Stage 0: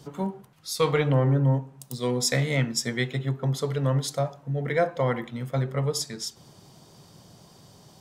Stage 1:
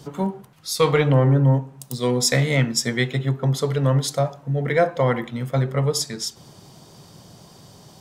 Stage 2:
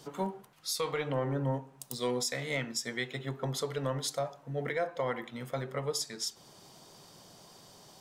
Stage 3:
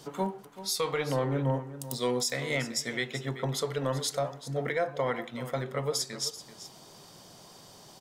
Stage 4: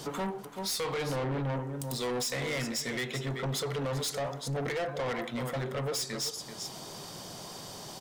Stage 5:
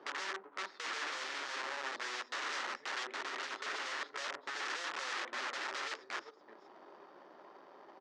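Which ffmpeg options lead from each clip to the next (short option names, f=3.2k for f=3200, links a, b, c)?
-af "acontrast=35"
-af "equalizer=f=96:w=0.48:g=-12,alimiter=limit=-17.5dB:level=0:latency=1:release=408,volume=-5dB"
-af "aecho=1:1:384:0.2,volume=3dB"
-filter_complex "[0:a]asplit=2[a][b];[b]alimiter=level_in=6dB:limit=-24dB:level=0:latency=1:release=448,volume=-6dB,volume=2dB[c];[a][c]amix=inputs=2:normalize=0,asoftclip=type=tanh:threshold=-31dB,volume=1.5dB"
-af "adynamicsmooth=sensitivity=3:basefreq=510,aeval=exprs='(mod(53.1*val(0)+1,2)-1)/53.1':c=same,highpass=f=390:w=0.5412,highpass=f=390:w=1.3066,equalizer=f=470:t=q:w=4:g=-9,equalizer=f=690:t=q:w=4:g=-7,equalizer=f=1.3k:t=q:w=4:g=4,equalizer=f=1.8k:t=q:w=4:g=6,lowpass=f=6.2k:w=0.5412,lowpass=f=6.2k:w=1.3066"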